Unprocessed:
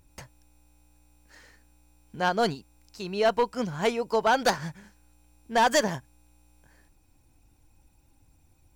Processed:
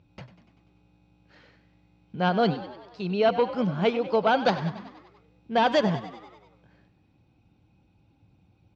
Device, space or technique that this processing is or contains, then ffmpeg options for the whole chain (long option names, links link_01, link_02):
frequency-shifting delay pedal into a guitar cabinet: -filter_complex "[0:a]asplit=8[link_01][link_02][link_03][link_04][link_05][link_06][link_07][link_08];[link_02]adelay=97,afreqshift=49,volume=-14dB[link_09];[link_03]adelay=194,afreqshift=98,volume=-18.2dB[link_10];[link_04]adelay=291,afreqshift=147,volume=-22.3dB[link_11];[link_05]adelay=388,afreqshift=196,volume=-26.5dB[link_12];[link_06]adelay=485,afreqshift=245,volume=-30.6dB[link_13];[link_07]adelay=582,afreqshift=294,volume=-34.8dB[link_14];[link_08]adelay=679,afreqshift=343,volume=-38.9dB[link_15];[link_01][link_09][link_10][link_11][link_12][link_13][link_14][link_15]amix=inputs=8:normalize=0,highpass=92,equalizer=frequency=110:width_type=q:width=4:gain=6,equalizer=frequency=180:width_type=q:width=4:gain=7,equalizer=frequency=980:width_type=q:width=4:gain=-5,equalizer=frequency=1800:width_type=q:width=4:gain=-8,lowpass=frequency=3800:width=0.5412,lowpass=frequency=3800:width=1.3066,volume=2dB"